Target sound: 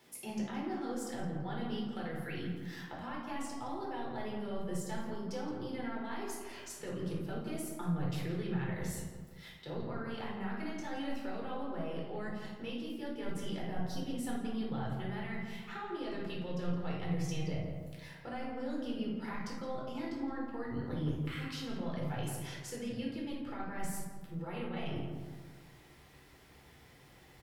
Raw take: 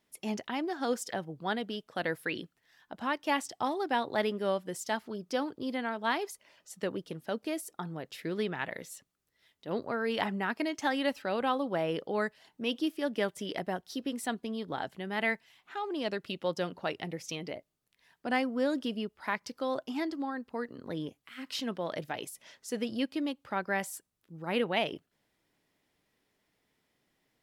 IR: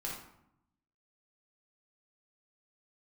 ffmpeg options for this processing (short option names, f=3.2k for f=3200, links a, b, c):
-filter_complex "[0:a]highpass=61,areverse,acompressor=threshold=-43dB:ratio=6,areverse,asubboost=boost=6:cutoff=80,acrossover=split=170[a][b];[b]acompressor=threshold=-58dB:ratio=6[c];[a][c]amix=inputs=2:normalize=0,asplit=2[d][e];[e]adelay=168,lowpass=f=1.5k:p=1,volume=-5dB,asplit=2[f][g];[g]adelay=168,lowpass=f=1.5k:p=1,volume=0.51,asplit=2[h][i];[i]adelay=168,lowpass=f=1.5k:p=1,volume=0.51,asplit=2[j][k];[k]adelay=168,lowpass=f=1.5k:p=1,volume=0.51,asplit=2[l][m];[m]adelay=168,lowpass=f=1.5k:p=1,volume=0.51,asplit=2[n][o];[o]adelay=168,lowpass=f=1.5k:p=1,volume=0.51[p];[d][f][h][j][l][n][p]amix=inputs=7:normalize=0[q];[1:a]atrim=start_sample=2205[r];[q][r]afir=irnorm=-1:irlink=0,volume=15.5dB"